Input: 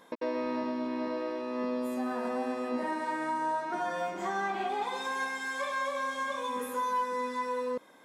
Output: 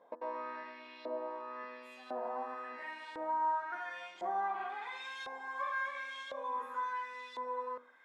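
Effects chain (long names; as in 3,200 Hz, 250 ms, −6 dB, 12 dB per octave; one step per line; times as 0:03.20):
hum removal 82.28 Hz, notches 23
auto-filter band-pass saw up 0.95 Hz 590–3,600 Hz
level +1 dB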